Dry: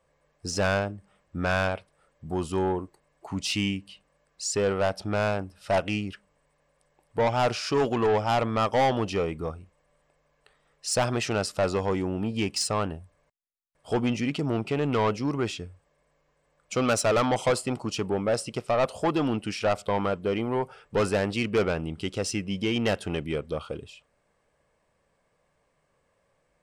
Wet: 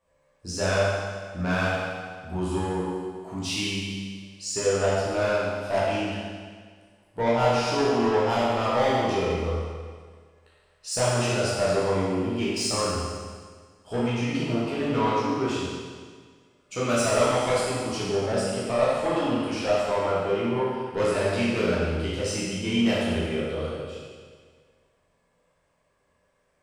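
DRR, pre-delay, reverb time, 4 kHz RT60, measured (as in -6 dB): -8.0 dB, 10 ms, 1.7 s, 1.7 s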